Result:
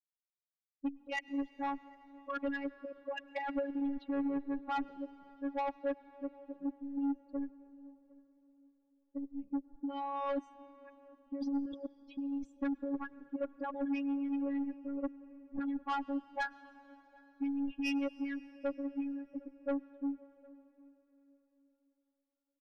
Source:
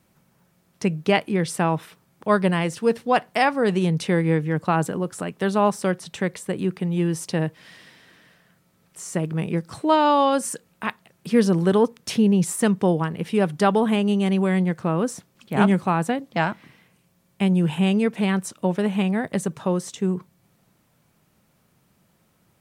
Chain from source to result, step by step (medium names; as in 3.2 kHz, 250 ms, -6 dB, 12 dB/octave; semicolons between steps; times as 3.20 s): expander on every frequency bin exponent 3; high-pass 120 Hz 12 dB/octave; level-controlled noise filter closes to 330 Hz, open at -19.5 dBFS; low-pass 3.1 kHz 24 dB/octave; comb 2.5 ms, depth 33%; compressor with a negative ratio -32 dBFS, ratio -1; robot voice 280 Hz; saturation -32 dBFS, distortion -12 dB; echo from a far wall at 130 m, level -25 dB; on a send at -18 dB: reverberation RT60 4.2 s, pre-delay 96 ms; on the sum: trim +3.5 dB